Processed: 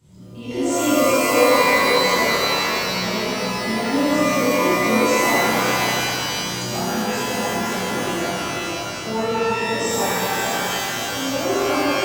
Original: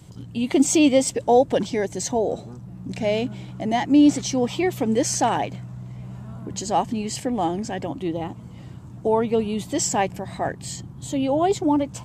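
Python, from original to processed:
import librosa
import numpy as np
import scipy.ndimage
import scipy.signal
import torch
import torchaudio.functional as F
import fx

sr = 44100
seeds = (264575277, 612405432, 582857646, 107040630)

y = fx.chorus_voices(x, sr, voices=2, hz=0.5, base_ms=27, depth_ms=1.3, mix_pct=55)
y = y + 10.0 ** (-6.0 / 20.0) * np.pad(y, (int(532 * sr / 1000.0), 0))[:len(y)]
y = fx.rev_shimmer(y, sr, seeds[0], rt60_s=2.6, semitones=12, shimmer_db=-2, drr_db=-10.0)
y = y * 10.0 ** (-8.5 / 20.0)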